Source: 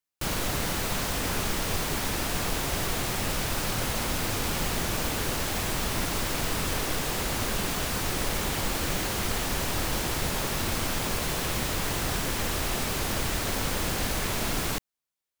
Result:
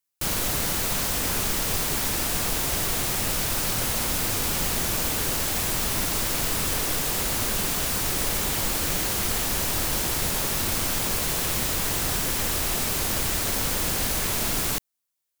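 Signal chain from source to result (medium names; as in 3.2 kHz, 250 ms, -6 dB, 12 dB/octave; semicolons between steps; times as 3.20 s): treble shelf 5.5 kHz +9 dB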